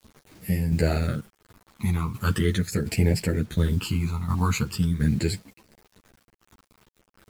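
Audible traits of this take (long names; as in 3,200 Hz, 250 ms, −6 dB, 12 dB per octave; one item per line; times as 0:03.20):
phaser sweep stages 12, 0.41 Hz, lowest notch 520–1,200 Hz
a quantiser's noise floor 8 bits, dither none
tremolo saw down 1.4 Hz, depth 55%
a shimmering, thickened sound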